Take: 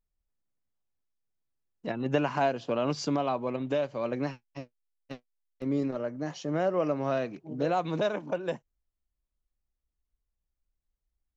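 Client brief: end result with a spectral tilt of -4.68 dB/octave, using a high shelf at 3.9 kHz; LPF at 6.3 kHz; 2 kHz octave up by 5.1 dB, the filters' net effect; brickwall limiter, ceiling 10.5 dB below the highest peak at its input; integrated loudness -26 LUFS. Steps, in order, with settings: low-pass 6.3 kHz; peaking EQ 2 kHz +5.5 dB; treble shelf 3.9 kHz +6.5 dB; trim +7.5 dB; peak limiter -14.5 dBFS

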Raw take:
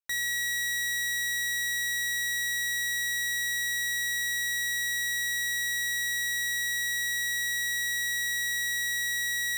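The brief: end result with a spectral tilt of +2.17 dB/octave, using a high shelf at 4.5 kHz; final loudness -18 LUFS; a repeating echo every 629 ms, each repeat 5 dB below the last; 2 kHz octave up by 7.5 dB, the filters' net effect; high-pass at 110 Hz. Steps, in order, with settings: high-pass 110 Hz; peaking EQ 2 kHz +8.5 dB; treble shelf 4.5 kHz -6 dB; feedback delay 629 ms, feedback 56%, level -5 dB; trim +6.5 dB

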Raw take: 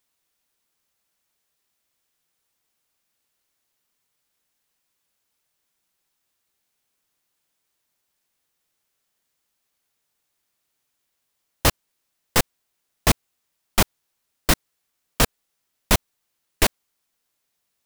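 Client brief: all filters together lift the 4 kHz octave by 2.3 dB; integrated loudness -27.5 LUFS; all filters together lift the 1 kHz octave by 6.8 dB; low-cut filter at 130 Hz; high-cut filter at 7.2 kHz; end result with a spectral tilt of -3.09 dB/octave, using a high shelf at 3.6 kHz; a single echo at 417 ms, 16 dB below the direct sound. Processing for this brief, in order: high-pass 130 Hz; low-pass 7.2 kHz; peaking EQ 1 kHz +8.5 dB; treble shelf 3.6 kHz -5.5 dB; peaking EQ 4 kHz +6.5 dB; delay 417 ms -16 dB; trim -4.5 dB

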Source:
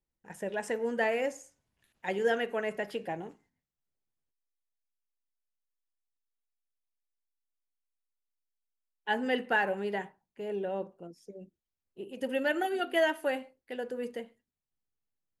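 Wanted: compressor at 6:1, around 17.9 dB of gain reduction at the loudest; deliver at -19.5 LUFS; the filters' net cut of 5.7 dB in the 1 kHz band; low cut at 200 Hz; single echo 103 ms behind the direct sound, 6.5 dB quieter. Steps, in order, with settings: high-pass 200 Hz; peaking EQ 1 kHz -8.5 dB; compression 6:1, threshold -45 dBFS; delay 103 ms -6.5 dB; trim +28.5 dB

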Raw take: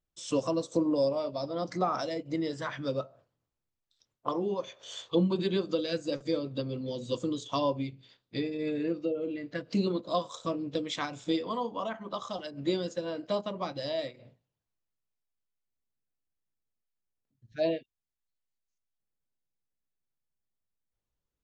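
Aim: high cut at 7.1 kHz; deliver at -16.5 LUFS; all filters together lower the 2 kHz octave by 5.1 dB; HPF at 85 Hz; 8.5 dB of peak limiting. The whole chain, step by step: high-pass 85 Hz; low-pass 7.1 kHz; peaking EQ 2 kHz -7 dB; trim +18.5 dB; peak limiter -5.5 dBFS

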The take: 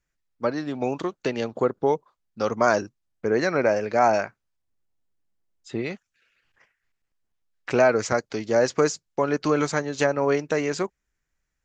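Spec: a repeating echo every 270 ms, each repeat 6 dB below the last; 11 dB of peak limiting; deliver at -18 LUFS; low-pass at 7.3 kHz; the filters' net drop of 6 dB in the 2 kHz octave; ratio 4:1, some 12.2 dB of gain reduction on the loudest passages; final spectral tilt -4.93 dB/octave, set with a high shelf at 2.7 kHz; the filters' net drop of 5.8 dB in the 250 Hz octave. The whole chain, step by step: low-pass 7.3 kHz; peaking EQ 250 Hz -7.5 dB; peaking EQ 2 kHz -7 dB; treble shelf 2.7 kHz -3.5 dB; compression 4:1, threshold -31 dBFS; peak limiter -29 dBFS; feedback delay 270 ms, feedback 50%, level -6 dB; trim +22 dB

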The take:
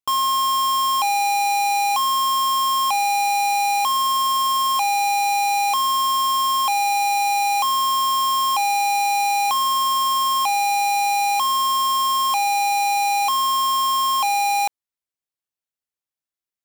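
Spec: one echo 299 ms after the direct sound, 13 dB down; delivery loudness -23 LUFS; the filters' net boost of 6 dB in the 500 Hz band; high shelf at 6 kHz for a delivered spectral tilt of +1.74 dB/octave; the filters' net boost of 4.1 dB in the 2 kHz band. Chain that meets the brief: peaking EQ 500 Hz +8.5 dB; peaking EQ 2 kHz +4 dB; treble shelf 6 kHz +6.5 dB; delay 299 ms -13 dB; trim -7.5 dB

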